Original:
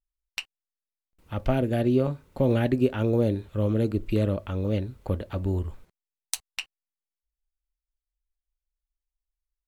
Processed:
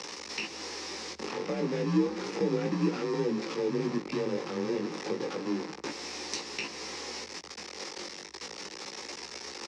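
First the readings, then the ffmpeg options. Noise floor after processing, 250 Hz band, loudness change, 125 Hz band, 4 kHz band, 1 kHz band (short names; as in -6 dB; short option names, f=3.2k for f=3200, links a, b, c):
-45 dBFS, -4.0 dB, -6.5 dB, -12.0 dB, +4.5 dB, 0.0 dB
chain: -filter_complex "[0:a]aeval=exprs='val(0)+0.5*0.0891*sgn(val(0))':c=same,asplit=2[a][b];[b]acrusher=samples=30:mix=1:aa=0.000001,volume=-7.5dB[c];[a][c]amix=inputs=2:normalize=0,flanger=delay=16:depth=5.2:speed=0.32,aemphasis=mode=reproduction:type=cd,areverse,acompressor=mode=upward:threshold=-22dB:ratio=2.5,areverse,bandreject=f=720:w=12,afreqshift=-76,acrossover=split=320[d][e];[e]acompressor=threshold=-38dB:ratio=2.5[f];[d][f]amix=inputs=2:normalize=0,highpass=f=250:w=0.5412,highpass=f=250:w=1.3066,equalizer=f=260:t=q:w=4:g=-8,equalizer=f=650:t=q:w=4:g=-9,equalizer=f=1.5k:t=q:w=4:g=-7,equalizer=f=3.2k:t=q:w=4:g=-6,equalizer=f=5.4k:t=q:w=4:g=9,lowpass=f=6.4k:w=0.5412,lowpass=f=6.4k:w=1.3066,aecho=1:1:143:0.0944,volume=3dB"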